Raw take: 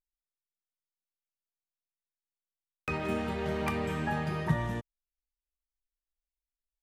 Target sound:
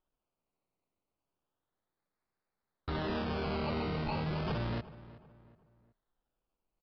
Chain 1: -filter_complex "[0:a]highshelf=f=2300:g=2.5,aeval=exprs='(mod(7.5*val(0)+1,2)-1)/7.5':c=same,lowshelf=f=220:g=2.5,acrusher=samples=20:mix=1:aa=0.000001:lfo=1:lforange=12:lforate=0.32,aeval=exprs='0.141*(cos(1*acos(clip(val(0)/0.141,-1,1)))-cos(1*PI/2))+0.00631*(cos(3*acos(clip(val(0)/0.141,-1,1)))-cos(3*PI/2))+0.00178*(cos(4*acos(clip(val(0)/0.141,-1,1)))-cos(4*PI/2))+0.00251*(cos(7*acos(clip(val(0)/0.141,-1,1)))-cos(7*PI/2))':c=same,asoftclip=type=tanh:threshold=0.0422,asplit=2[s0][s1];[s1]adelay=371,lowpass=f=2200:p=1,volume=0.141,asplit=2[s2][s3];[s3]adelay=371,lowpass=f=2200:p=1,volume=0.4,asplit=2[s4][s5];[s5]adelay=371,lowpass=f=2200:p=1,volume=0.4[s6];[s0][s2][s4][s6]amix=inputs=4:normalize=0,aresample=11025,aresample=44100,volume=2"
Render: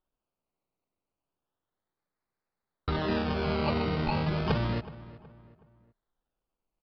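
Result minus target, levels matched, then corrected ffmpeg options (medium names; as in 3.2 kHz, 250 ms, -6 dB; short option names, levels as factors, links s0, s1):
saturation: distortion -7 dB
-filter_complex "[0:a]highshelf=f=2300:g=2.5,aeval=exprs='(mod(7.5*val(0)+1,2)-1)/7.5':c=same,lowshelf=f=220:g=2.5,acrusher=samples=20:mix=1:aa=0.000001:lfo=1:lforange=12:lforate=0.32,aeval=exprs='0.141*(cos(1*acos(clip(val(0)/0.141,-1,1)))-cos(1*PI/2))+0.00631*(cos(3*acos(clip(val(0)/0.141,-1,1)))-cos(3*PI/2))+0.00178*(cos(4*acos(clip(val(0)/0.141,-1,1)))-cos(4*PI/2))+0.00251*(cos(7*acos(clip(val(0)/0.141,-1,1)))-cos(7*PI/2))':c=same,asoftclip=type=tanh:threshold=0.0126,asplit=2[s0][s1];[s1]adelay=371,lowpass=f=2200:p=1,volume=0.141,asplit=2[s2][s3];[s3]adelay=371,lowpass=f=2200:p=1,volume=0.4,asplit=2[s4][s5];[s5]adelay=371,lowpass=f=2200:p=1,volume=0.4[s6];[s0][s2][s4][s6]amix=inputs=4:normalize=0,aresample=11025,aresample=44100,volume=2"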